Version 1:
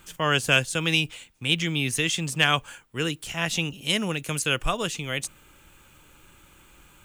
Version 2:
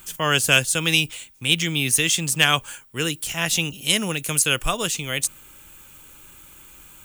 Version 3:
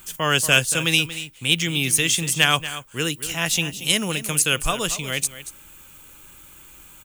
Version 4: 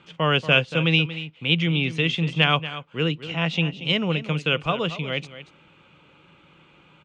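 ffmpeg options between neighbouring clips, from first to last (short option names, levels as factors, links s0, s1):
-af "aemphasis=mode=production:type=50kf,volume=1.19"
-af "aecho=1:1:233:0.211"
-af "highpass=130,equalizer=f=160:t=q:w=4:g=8,equalizer=f=500:t=q:w=4:g=4,equalizer=f=1700:t=q:w=4:g=-7,lowpass=f=3200:w=0.5412,lowpass=f=3200:w=1.3066"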